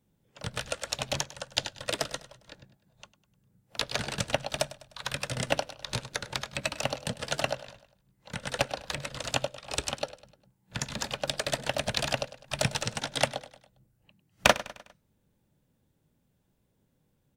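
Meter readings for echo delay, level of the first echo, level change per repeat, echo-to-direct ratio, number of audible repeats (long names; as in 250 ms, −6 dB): 101 ms, −17.0 dB, −6.5 dB, −16.0 dB, 3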